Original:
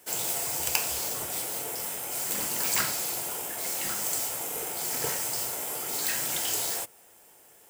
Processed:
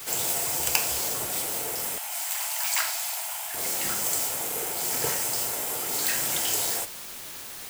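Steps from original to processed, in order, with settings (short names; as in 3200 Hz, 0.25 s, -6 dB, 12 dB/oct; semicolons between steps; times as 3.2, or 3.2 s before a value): in parallel at -0.5 dB: requantised 6-bit, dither triangular; 1.98–3.54 on the sum: rippled Chebyshev high-pass 630 Hz, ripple 3 dB; gain -3 dB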